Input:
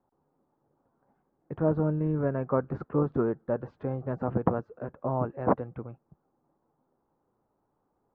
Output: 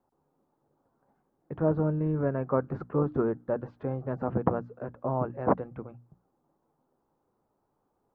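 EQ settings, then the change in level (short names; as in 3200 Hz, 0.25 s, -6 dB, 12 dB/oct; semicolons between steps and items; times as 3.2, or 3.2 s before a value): notches 60/120/180/240/300 Hz; 0.0 dB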